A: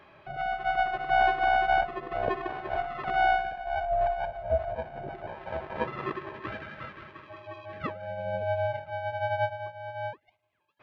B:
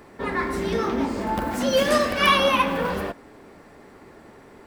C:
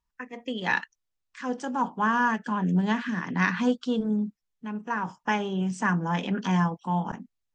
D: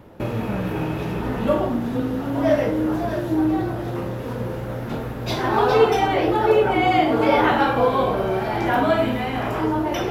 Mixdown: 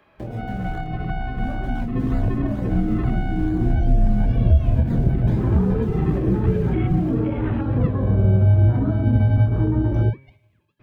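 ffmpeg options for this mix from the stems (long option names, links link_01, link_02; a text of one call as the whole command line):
ffmpeg -i stem1.wav -i stem2.wav -i stem3.wav -i stem4.wav -filter_complex "[0:a]dynaudnorm=framelen=150:gausssize=7:maxgain=13.5dB,bandreject=frequency=134.2:width_type=h:width=4,bandreject=frequency=268.4:width_type=h:width=4,bandreject=frequency=402.6:width_type=h:width=4,bandreject=frequency=536.8:width_type=h:width=4,bandreject=frequency=671:width_type=h:width=4,bandreject=frequency=805.2:width_type=h:width=4,bandreject=frequency=939.4:width_type=h:width=4,bandreject=frequency=1073.6:width_type=h:width=4,bandreject=frequency=1207.8:width_type=h:width=4,bandreject=frequency=1342:width_type=h:width=4,bandreject=frequency=1476.2:width_type=h:width=4,bandreject=frequency=1610.4:width_type=h:width=4,bandreject=frequency=1744.6:width_type=h:width=4,bandreject=frequency=1878.8:width_type=h:width=4,bandreject=frequency=2013:width_type=h:width=4,bandreject=frequency=2147.2:width_type=h:width=4,bandreject=frequency=2281.4:width_type=h:width=4,bandreject=frequency=2415.6:width_type=h:width=4,bandreject=frequency=2549.8:width_type=h:width=4,bandreject=frequency=2684:width_type=h:width=4,bandreject=frequency=2818.2:width_type=h:width=4,bandreject=frequency=2952.4:width_type=h:width=4,bandreject=frequency=3086.6:width_type=h:width=4,bandreject=frequency=3220.8:width_type=h:width=4,bandreject=frequency=3355:width_type=h:width=4,bandreject=frequency=3489.2:width_type=h:width=4,bandreject=frequency=3623.4:width_type=h:width=4,bandreject=frequency=3757.6:width_type=h:width=4,bandreject=frequency=3891.8:width_type=h:width=4,bandreject=frequency=4026:width_type=h:width=4,bandreject=frequency=4160.2:width_type=h:width=4,bandreject=frequency=4294.4:width_type=h:width=4,bandreject=frequency=4428.6:width_type=h:width=4,bandreject=frequency=4562.8:width_type=h:width=4,bandreject=frequency=4697:width_type=h:width=4,bandreject=frequency=4831.2:width_type=h:width=4,volume=-3.5dB[link_01];[1:a]acompressor=threshold=-26dB:ratio=6,adelay=2100,volume=-6.5dB[link_02];[2:a]acrusher=samples=29:mix=1:aa=0.000001:lfo=1:lforange=29:lforate=2.2,volume=-2.5dB[link_03];[3:a]afwtdn=0.0794,equalizer=frequency=110:width_type=o:width=1.9:gain=-7,volume=-1.5dB[link_04];[link_02][link_03]amix=inputs=2:normalize=0,flanger=delay=19.5:depth=7.8:speed=0.5,alimiter=level_in=3dB:limit=-24dB:level=0:latency=1:release=393,volume=-3dB,volume=0dB[link_05];[link_01][link_04]amix=inputs=2:normalize=0,acompressor=threshold=-20dB:ratio=6,volume=0dB[link_06];[link_05][link_06]amix=inputs=2:normalize=0,acrossover=split=190[link_07][link_08];[link_08]acompressor=threshold=-35dB:ratio=2[link_09];[link_07][link_09]amix=inputs=2:normalize=0,asubboost=boost=11.5:cutoff=230,acrossover=split=3400[link_10][link_11];[link_11]acompressor=threshold=-56dB:ratio=4:attack=1:release=60[link_12];[link_10][link_12]amix=inputs=2:normalize=0" out.wav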